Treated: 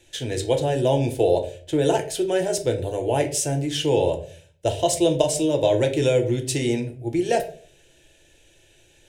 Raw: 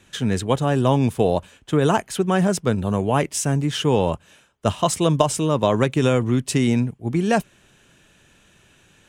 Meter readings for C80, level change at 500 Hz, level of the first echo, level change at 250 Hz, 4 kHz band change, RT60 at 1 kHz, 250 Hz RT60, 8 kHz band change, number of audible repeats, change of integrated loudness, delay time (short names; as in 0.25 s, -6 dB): 17.0 dB, +1.0 dB, none, -4.5 dB, 0.0 dB, 0.40 s, 0.55 s, +0.5 dB, none, -2.0 dB, none